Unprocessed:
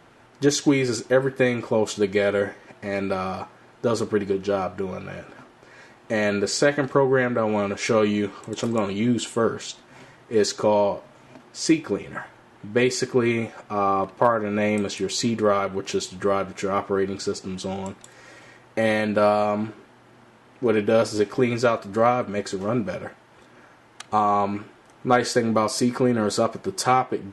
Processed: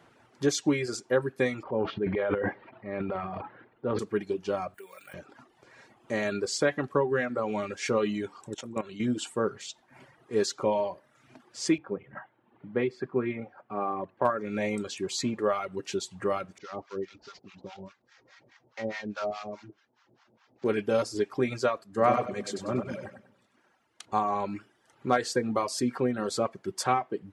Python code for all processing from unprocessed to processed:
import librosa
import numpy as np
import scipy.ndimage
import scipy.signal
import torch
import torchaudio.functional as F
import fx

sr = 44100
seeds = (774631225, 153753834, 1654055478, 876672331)

y = fx.chain(x, sr, fx.transient(attack_db=-3, sustain_db=12),
    fx.gaussian_blur(sigma=3.3), at=(1.63, 3.99))
y = fx.chain(y, sr, fx.highpass(hz=1300.0, slope=6),
    fx.high_shelf(hz=5500.0, db=3.0),
    fx.resample_bad(factor=4, down='filtered', up='hold'), at=(4.74, 5.14))
y = fx.chain(y, sr, fx.highpass(hz=56.0, slope=12),
    fx.notch(hz=4800.0, q=7.2),
    fx.level_steps(step_db=11), at=(8.54, 9.0))
y = fx.chain(y, sr, fx.highpass(hz=99.0, slope=12),
    fx.air_absorb(metres=490.0),
    fx.hum_notches(base_hz=50, count=3), at=(11.78, 14.25))
y = fx.chain(y, sr, fx.cvsd(bps=32000),
    fx.low_shelf(hz=430.0, db=-3.5),
    fx.harmonic_tremolo(hz=4.8, depth_pct=100, crossover_hz=760.0), at=(16.58, 20.64))
y = fx.chain(y, sr, fx.echo_split(split_hz=370.0, low_ms=127, high_ms=97, feedback_pct=52, wet_db=-4.0),
    fx.band_widen(depth_pct=40), at=(21.84, 24.07))
y = fx.dereverb_blind(y, sr, rt60_s=0.8)
y = scipy.signal.sosfilt(scipy.signal.butter(2, 63.0, 'highpass', fs=sr, output='sos'), y)
y = y * 10.0 ** (-6.0 / 20.0)